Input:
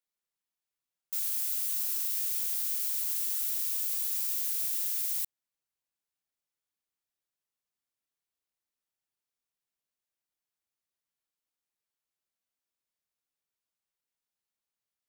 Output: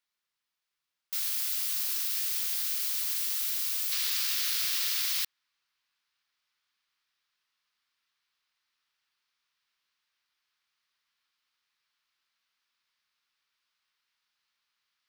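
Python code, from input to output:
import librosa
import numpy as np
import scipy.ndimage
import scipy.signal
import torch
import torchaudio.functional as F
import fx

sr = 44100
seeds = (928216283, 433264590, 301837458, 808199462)

y = fx.band_shelf(x, sr, hz=2300.0, db=fx.steps((0.0, 8.5), (3.91, 15.5)), octaves=2.8)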